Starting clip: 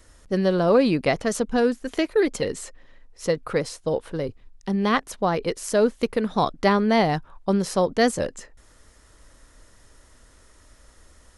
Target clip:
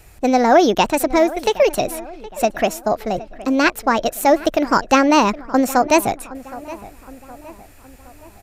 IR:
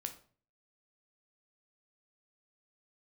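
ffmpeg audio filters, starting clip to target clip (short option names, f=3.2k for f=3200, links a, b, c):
-filter_complex "[0:a]asetrate=59535,aresample=44100,asplit=2[a][b];[b]adelay=767,lowpass=f=2.4k:p=1,volume=-17.5dB,asplit=2[c][d];[d]adelay=767,lowpass=f=2.4k:p=1,volume=0.49,asplit=2[e][f];[f]adelay=767,lowpass=f=2.4k:p=1,volume=0.49,asplit=2[g][h];[h]adelay=767,lowpass=f=2.4k:p=1,volume=0.49[i];[a][c][e][g][i]amix=inputs=5:normalize=0,volume=6dB"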